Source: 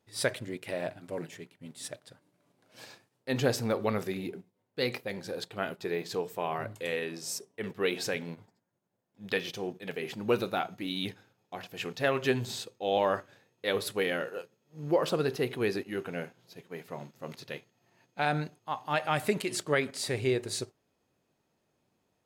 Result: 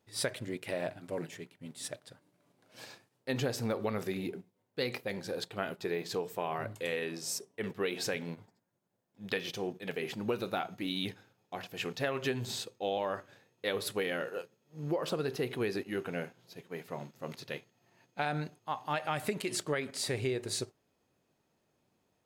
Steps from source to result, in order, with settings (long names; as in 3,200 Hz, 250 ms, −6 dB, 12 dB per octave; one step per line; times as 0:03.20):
downward compressor 6 to 1, threshold −29 dBFS, peak gain reduction 9 dB